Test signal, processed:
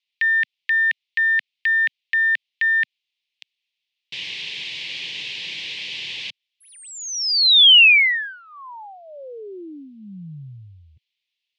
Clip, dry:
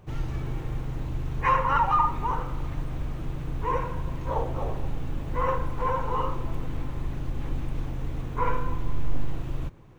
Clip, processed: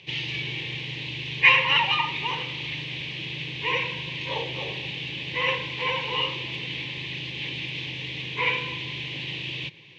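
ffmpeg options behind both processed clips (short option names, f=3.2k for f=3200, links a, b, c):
-af "aexciter=amount=15.8:drive=9.3:freq=2.3k,highpass=f=130:w=0.5412,highpass=f=130:w=1.3066,equalizer=f=240:t=q:w=4:g=-10,equalizer=f=690:t=q:w=4:g=-10,equalizer=f=1.3k:t=q:w=4:g=-9,lowpass=f=3k:w=0.5412,lowpass=f=3k:w=1.3066"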